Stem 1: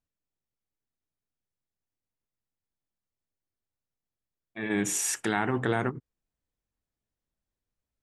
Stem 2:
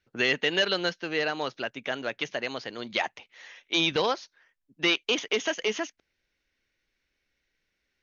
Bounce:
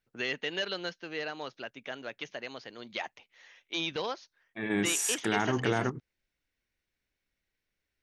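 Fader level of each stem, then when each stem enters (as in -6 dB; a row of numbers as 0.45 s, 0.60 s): -1.5 dB, -8.5 dB; 0.00 s, 0.00 s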